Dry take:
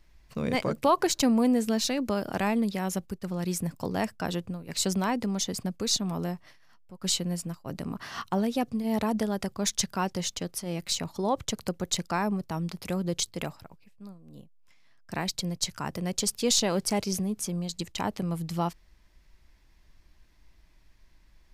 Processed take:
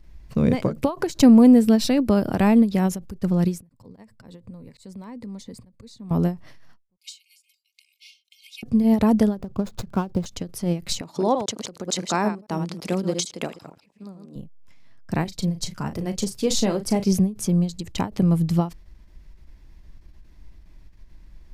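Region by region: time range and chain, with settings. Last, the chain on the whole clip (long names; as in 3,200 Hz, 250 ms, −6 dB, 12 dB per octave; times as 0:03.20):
0:01.49–0:02.64: high-shelf EQ 12,000 Hz +3 dB + notch filter 6,600 Hz, Q 5.7
0:03.69–0:06.11: volume swells 666 ms + EQ curve with evenly spaced ripples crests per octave 0.97, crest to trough 7 dB + downward compressor 3 to 1, threshold −50 dBFS
0:06.97–0:08.63: linear-phase brick-wall high-pass 2,100 Hz + spectral tilt −2.5 dB per octave + comb filter 3.2 ms, depth 64%
0:09.35–0:10.26: running median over 15 samples + parametric band 1,900 Hz −9 dB 0.23 octaves
0:11.01–0:14.36: delay that plays each chunk backwards 112 ms, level −7 dB + band-pass filter 280–7,700 Hz + high-shelf EQ 5,900 Hz +7.5 dB
0:15.24–0:17.05: double-tracking delay 36 ms −9 dB + flanger 1.3 Hz, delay 2.2 ms, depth 5.5 ms, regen −50%
whole clip: low-shelf EQ 490 Hz +12 dB; every ending faded ahead of time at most 200 dB per second; level +2 dB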